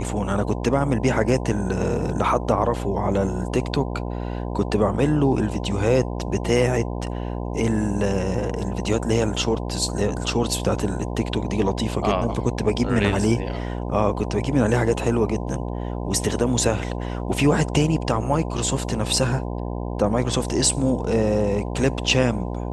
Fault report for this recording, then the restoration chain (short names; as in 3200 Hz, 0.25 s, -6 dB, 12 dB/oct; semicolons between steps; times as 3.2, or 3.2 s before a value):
buzz 60 Hz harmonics 17 -28 dBFS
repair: de-hum 60 Hz, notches 17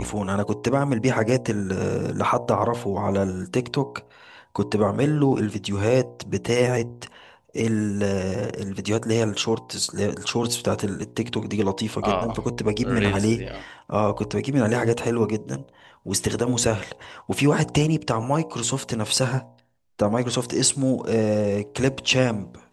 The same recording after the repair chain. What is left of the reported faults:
none